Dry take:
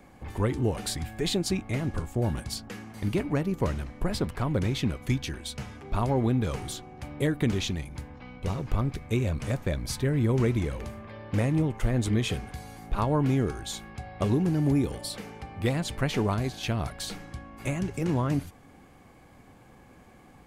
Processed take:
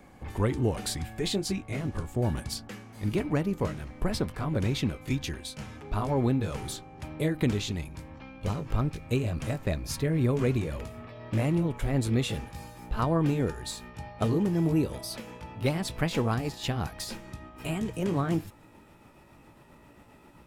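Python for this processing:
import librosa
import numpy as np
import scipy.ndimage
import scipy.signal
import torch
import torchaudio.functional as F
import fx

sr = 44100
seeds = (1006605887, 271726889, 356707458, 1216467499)

y = fx.pitch_glide(x, sr, semitones=2.5, runs='starting unshifted')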